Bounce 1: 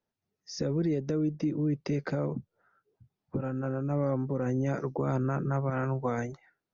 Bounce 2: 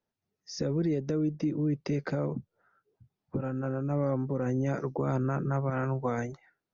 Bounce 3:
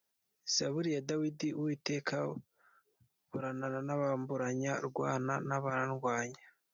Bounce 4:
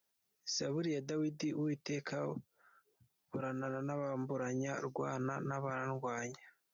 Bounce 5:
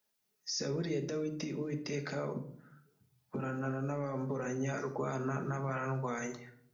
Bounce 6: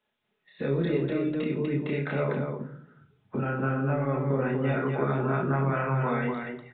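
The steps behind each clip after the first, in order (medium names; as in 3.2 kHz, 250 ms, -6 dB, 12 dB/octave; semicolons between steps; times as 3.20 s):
no audible change
tilt EQ +3.5 dB/octave
peak limiter -29.5 dBFS, peak gain reduction 10.5 dB
simulated room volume 1000 m³, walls furnished, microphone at 1.4 m; trim +1 dB
loudspeakers at several distances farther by 10 m -2 dB, 84 m -3 dB; resampled via 8 kHz; trim +5.5 dB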